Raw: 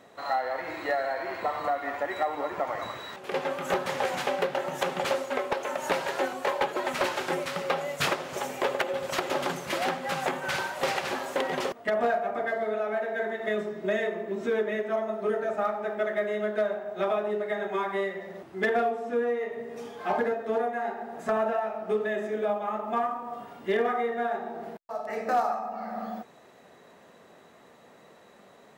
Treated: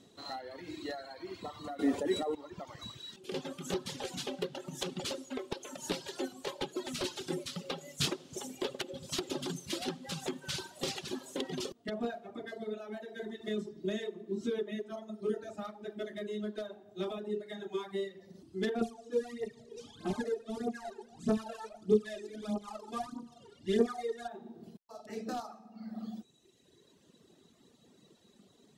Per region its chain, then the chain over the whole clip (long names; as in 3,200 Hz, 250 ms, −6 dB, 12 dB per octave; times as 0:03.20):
0:01.79–0:02.35: parametric band 9,400 Hz +9 dB 0.68 octaves + hollow resonant body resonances 250/450 Hz, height 12 dB, ringing for 25 ms + envelope flattener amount 50%
0:18.81–0:24.28: variable-slope delta modulation 64 kbit/s + phase shifter 1.6 Hz, delay 2.4 ms, feedback 62% + high-frequency loss of the air 53 metres
whole clip: reverb reduction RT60 1.9 s; low-pass filter 11,000 Hz 12 dB per octave; flat-topped bell 1,100 Hz −15.5 dB 2.6 octaves; level +1 dB